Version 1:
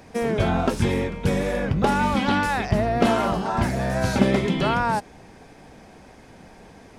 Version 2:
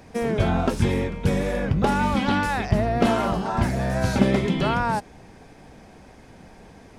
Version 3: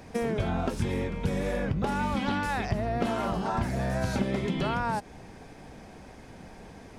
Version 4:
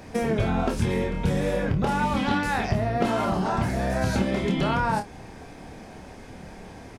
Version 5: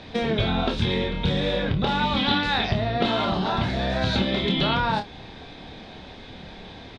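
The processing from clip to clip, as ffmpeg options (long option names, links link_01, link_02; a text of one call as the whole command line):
ffmpeg -i in.wav -af "lowshelf=frequency=170:gain=4,volume=-1.5dB" out.wav
ffmpeg -i in.wav -af "acompressor=threshold=-26dB:ratio=4" out.wav
ffmpeg -i in.wav -af "aecho=1:1:27|55:0.531|0.158,volume=3.5dB" out.wav
ffmpeg -i in.wav -af "lowpass=frequency=3700:width_type=q:width=7.4" out.wav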